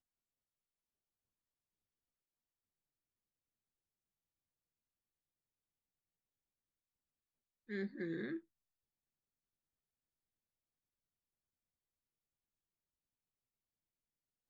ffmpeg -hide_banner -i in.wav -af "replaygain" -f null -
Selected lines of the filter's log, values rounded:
track_gain = +44.2 dB
track_peak = 0.022